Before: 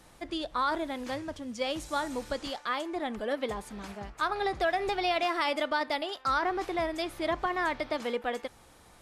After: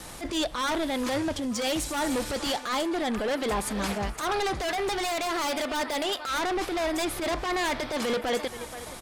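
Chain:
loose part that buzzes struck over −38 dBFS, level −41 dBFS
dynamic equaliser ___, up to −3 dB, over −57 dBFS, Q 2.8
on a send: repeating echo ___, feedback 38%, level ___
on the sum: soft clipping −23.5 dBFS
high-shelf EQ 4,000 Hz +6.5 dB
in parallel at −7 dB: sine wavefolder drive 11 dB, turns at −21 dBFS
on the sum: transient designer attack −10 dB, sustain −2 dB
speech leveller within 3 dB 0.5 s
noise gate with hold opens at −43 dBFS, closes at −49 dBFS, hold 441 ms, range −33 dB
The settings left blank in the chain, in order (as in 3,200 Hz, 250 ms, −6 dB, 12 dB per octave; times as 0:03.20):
6,300 Hz, 475 ms, −21.5 dB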